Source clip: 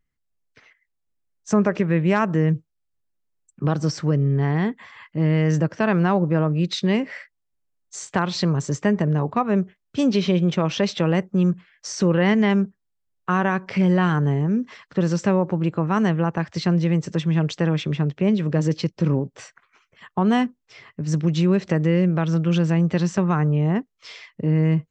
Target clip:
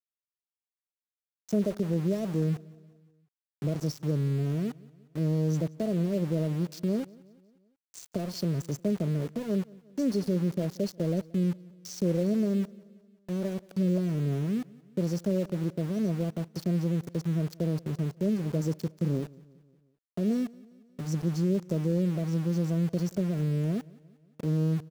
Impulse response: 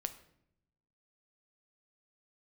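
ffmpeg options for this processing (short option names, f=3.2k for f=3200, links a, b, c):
-af "afftfilt=real='re*(1-between(b*sr/4096,700,4200))':imag='im*(1-between(b*sr/4096,700,4200))':win_size=4096:overlap=0.75,adynamicequalizer=threshold=0.00562:dfrequency=810:dqfactor=2.8:tfrequency=810:tqfactor=2.8:attack=5:release=100:ratio=0.375:range=3.5:mode=cutabove:tftype=bell,aeval=exprs='val(0)*gte(abs(val(0)),0.0316)':c=same,aecho=1:1:179|358|537|716:0.0708|0.0382|0.0206|0.0111,volume=-8dB"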